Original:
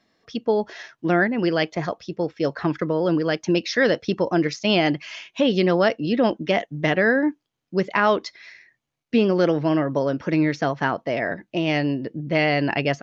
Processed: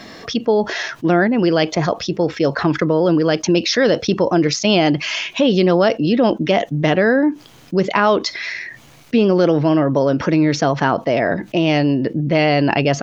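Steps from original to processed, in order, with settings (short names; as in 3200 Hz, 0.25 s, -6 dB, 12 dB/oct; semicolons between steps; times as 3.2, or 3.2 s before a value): dynamic EQ 1900 Hz, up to -6 dB, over -39 dBFS, Q 2.1; fast leveller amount 50%; gain +3.5 dB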